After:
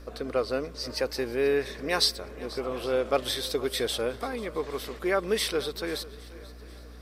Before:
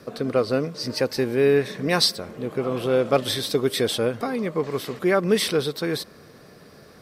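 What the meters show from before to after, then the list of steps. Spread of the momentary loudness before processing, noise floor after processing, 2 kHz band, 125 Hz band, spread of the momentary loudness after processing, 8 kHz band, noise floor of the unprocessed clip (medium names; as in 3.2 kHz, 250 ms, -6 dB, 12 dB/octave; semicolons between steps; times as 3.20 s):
8 LU, -45 dBFS, -4.0 dB, -12.0 dB, 14 LU, -4.0 dB, -49 dBFS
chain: hum 60 Hz, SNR 14 dB; peaking EQ 150 Hz -12.5 dB 1.5 oct; shuffle delay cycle 812 ms, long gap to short 1.5:1, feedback 30%, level -19.5 dB; trim -4 dB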